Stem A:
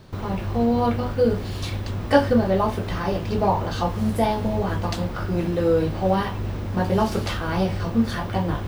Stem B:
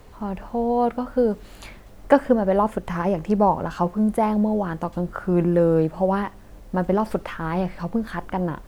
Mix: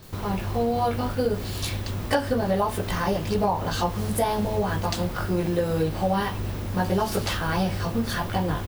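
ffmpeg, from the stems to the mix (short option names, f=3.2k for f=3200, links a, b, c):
-filter_complex "[0:a]volume=-2dB[a];[1:a]aemphasis=mode=production:type=50kf,volume=-1,adelay=25,volume=-5dB[b];[a][b]amix=inputs=2:normalize=0,highshelf=f=3.3k:g=7.5,acompressor=threshold=-19dB:ratio=6"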